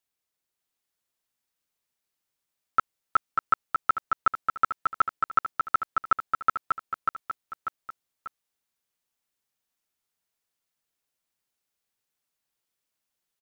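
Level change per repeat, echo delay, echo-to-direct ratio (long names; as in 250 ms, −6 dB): −6.5 dB, 592 ms, −3.0 dB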